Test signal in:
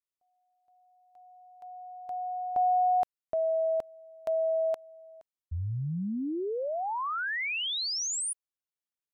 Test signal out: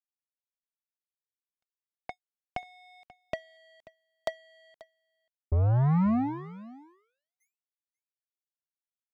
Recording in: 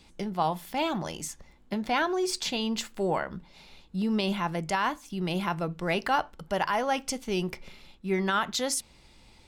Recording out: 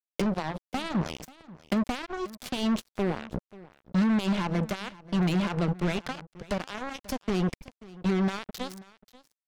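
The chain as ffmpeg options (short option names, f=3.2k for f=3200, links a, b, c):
-filter_complex "[0:a]lowpass=5.9k,bandreject=f=1.9k:w=11,alimiter=limit=-22dB:level=0:latency=1:release=92,acrossover=split=220[a][b];[b]acompressor=threshold=-46dB:ratio=5:attack=67:release=682:knee=2.83:detection=peak[c];[a][c]amix=inputs=2:normalize=0,acrusher=bits=5:mix=0:aa=0.5,aecho=1:1:536:0.1,volume=9dB"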